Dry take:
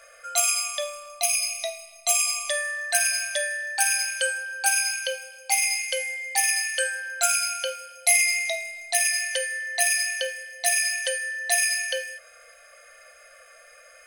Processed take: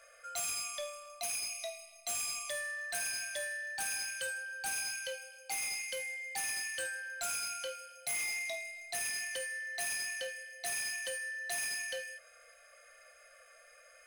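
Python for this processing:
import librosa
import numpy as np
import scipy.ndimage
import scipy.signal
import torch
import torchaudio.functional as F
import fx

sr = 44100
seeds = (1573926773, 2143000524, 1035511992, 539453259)

y = 10.0 ** (-24.5 / 20.0) * np.tanh(x / 10.0 ** (-24.5 / 20.0))
y = y * 10.0 ** (-8.5 / 20.0)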